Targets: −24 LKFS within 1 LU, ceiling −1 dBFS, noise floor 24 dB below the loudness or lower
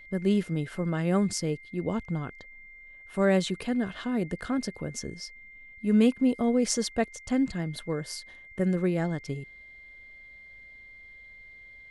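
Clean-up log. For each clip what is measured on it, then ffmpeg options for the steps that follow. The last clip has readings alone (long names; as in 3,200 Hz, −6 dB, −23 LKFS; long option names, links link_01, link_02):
interfering tone 2,100 Hz; level of the tone −47 dBFS; integrated loudness −28.5 LKFS; sample peak −10.0 dBFS; target loudness −24.0 LKFS
→ -af "bandreject=frequency=2100:width=30"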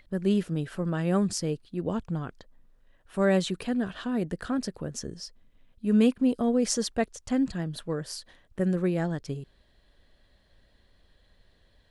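interfering tone none found; integrated loudness −28.5 LKFS; sample peak −10.0 dBFS; target loudness −24.0 LKFS
→ -af "volume=4.5dB"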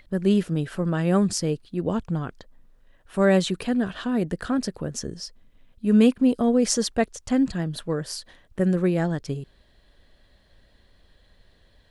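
integrated loudness −24.0 LKFS; sample peak −5.5 dBFS; background noise floor −60 dBFS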